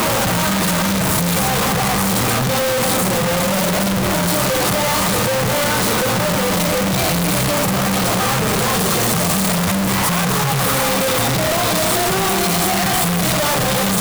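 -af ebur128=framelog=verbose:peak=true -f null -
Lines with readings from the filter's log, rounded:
Integrated loudness:
  I:         -16.1 LUFS
  Threshold: -26.1 LUFS
Loudness range:
  LRA:         0.6 LU
  Threshold: -36.1 LUFS
  LRA low:   -16.4 LUFS
  LRA high:  -15.8 LUFS
True peak:
  Peak:       -8.1 dBFS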